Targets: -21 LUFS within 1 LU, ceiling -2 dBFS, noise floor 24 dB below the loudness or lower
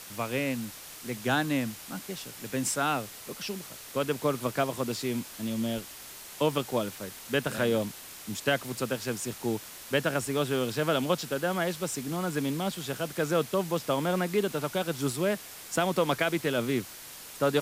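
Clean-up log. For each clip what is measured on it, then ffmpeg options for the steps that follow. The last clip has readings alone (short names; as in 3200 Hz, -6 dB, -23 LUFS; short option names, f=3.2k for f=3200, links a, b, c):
noise floor -45 dBFS; noise floor target -55 dBFS; loudness -30.5 LUFS; peak -13.5 dBFS; loudness target -21.0 LUFS
-> -af "afftdn=nr=10:nf=-45"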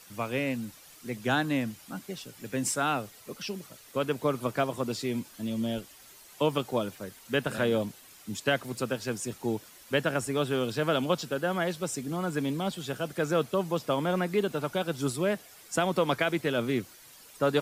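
noise floor -53 dBFS; noise floor target -55 dBFS
-> -af "afftdn=nr=6:nf=-53"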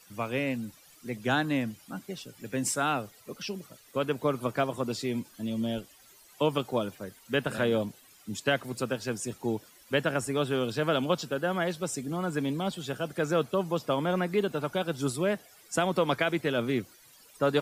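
noise floor -57 dBFS; loudness -30.5 LUFS; peak -13.5 dBFS; loudness target -21.0 LUFS
-> -af "volume=9.5dB"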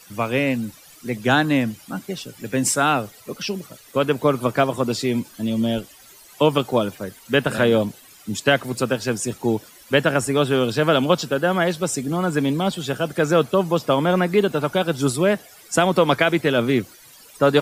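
loudness -21.0 LUFS; peak -4.0 dBFS; noise floor -48 dBFS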